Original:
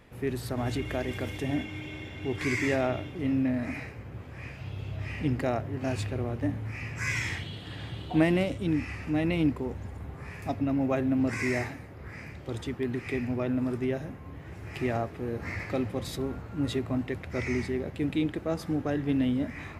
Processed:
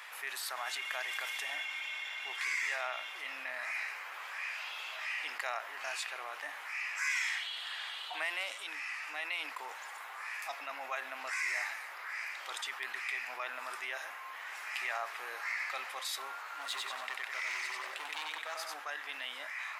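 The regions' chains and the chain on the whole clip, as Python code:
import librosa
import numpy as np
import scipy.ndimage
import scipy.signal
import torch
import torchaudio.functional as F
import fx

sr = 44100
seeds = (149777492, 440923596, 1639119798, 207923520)

y = fx.chain(x, sr, fx.echo_feedback(ms=94, feedback_pct=42, wet_db=-3.5),
    fx.overload_stage(gain_db=26.5), at=(16.4, 18.74))
y = fx.rider(y, sr, range_db=10, speed_s=2.0)
y = scipy.signal.sosfilt(scipy.signal.butter(4, 990.0, 'highpass', fs=sr, output='sos'), y)
y = fx.env_flatten(y, sr, amount_pct=50)
y = y * 10.0 ** (-5.5 / 20.0)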